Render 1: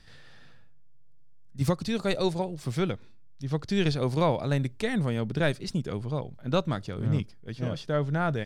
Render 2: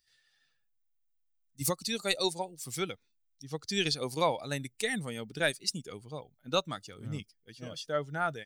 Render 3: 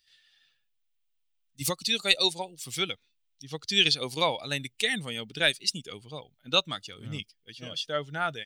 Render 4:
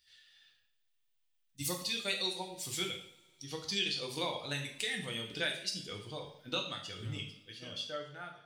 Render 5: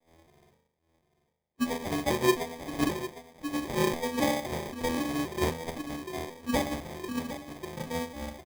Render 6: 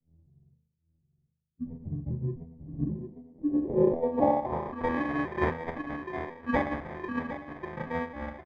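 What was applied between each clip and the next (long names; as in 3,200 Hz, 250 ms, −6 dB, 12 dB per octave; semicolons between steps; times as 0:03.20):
spectral dynamics exaggerated over time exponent 1.5; RIAA equalisation recording; automatic gain control gain up to 5 dB; level −4.5 dB
parametric band 3,100 Hz +12 dB 1.1 octaves
fade-out on the ending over 1.40 s; downward compressor 2.5 to 1, threshold −37 dBFS, peak gain reduction 14 dB; coupled-rooms reverb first 0.57 s, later 2.9 s, from −26 dB, DRR 0.5 dB; level −2 dB
vocoder with an arpeggio as carrier minor triad, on B3, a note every 262 ms; single-tap delay 756 ms −12 dB; sample-rate reduction 1,400 Hz, jitter 0%; level +8.5 dB
low-pass filter sweep 140 Hz → 1,600 Hz, 0:02.63–0:04.98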